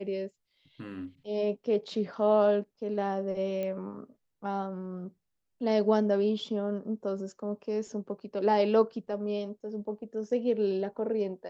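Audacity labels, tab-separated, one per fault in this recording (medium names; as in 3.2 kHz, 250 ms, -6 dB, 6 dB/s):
3.630000	3.630000	pop -23 dBFS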